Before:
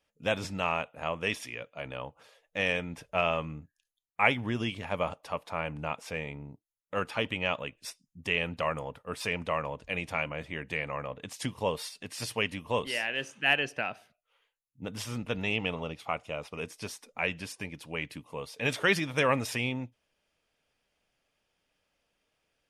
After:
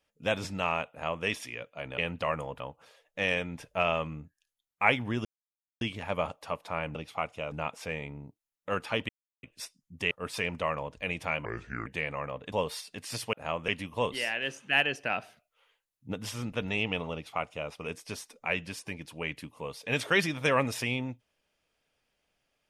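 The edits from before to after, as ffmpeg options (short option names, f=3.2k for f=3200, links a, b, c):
-filter_complex "[0:a]asplit=16[a][b][c][d][e][f][g][h][i][j][k][l][m][n][o][p];[a]atrim=end=1.982[q];[b]atrim=start=8.358:end=8.982[r];[c]atrim=start=1.978:end=4.63,asetpts=PTS-STARTPTS,afade=t=out:st=2.648:d=0.004:c=hsin,apad=pad_dur=0.56[s];[d]atrim=start=4.63:end=5.772,asetpts=PTS-STARTPTS,afade=t=in:d=0.004:c=hsin[t];[e]atrim=start=15.858:end=16.432[u];[f]atrim=start=5.768:end=7.34,asetpts=PTS-STARTPTS,afade=t=out:st=1.568:d=0.004:c=hsin[v];[g]atrim=start=7.34:end=7.68,asetpts=PTS-STARTPTS,volume=0[w];[h]atrim=start=7.68:end=8.362,asetpts=PTS-STARTPTS,afade=t=in:d=0.004:c=hsin[x];[i]atrim=start=8.978:end=10.324[y];[j]atrim=start=10.32:end=10.62,asetpts=PTS-STARTPTS,asetrate=32193,aresample=44100,atrim=end_sample=18123,asetpts=PTS-STARTPTS[z];[k]atrim=start=10.616:end=11.282[aa];[l]atrim=start=11.598:end=12.412[ab];[m]atrim=start=0.898:end=1.252[ac];[n]atrim=start=12.408:end=13.832[ad];[o]atrim=start=13.828:end=14.872,asetpts=PTS-STARTPTS,volume=3.5dB[ae];[p]atrim=start=14.868[af];[q][r]acrossfade=d=0.004:c1=hsin:c2=hsin[ag];[s][t]concat=n=2:v=0:a=1[ah];[ag][ah]acrossfade=d=0.004:c1=hsin:c2=hsin[ai];[ai][u]acrossfade=d=0.004:c1=hsin:c2=hsin[aj];[v][w][x]concat=n=3:v=0:a=1[ak];[aj][ak]acrossfade=d=0.004:c1=hsin:c2=hsin[al];[al][y]acrossfade=d=0.004:c1=hsin:c2=hsin[am];[am][z]acrossfade=d=0.004:c1=hsin:c2=hsin[an];[an][aa]acrossfade=d=0.004:c1=hsin:c2=hsin[ao];[ao][ab]acrossfade=d=0.004:c1=hsin:c2=hsin[ap];[ap][ac]acrossfade=d=0.004:c1=hsin:c2=hsin[aq];[aq][ad]acrossfade=d=0.004:c1=hsin:c2=hsin[ar];[ar][ae]acrossfade=d=0.004:c1=hsin:c2=hsin[as];[as][af]acrossfade=d=0.004:c1=hsin:c2=hsin"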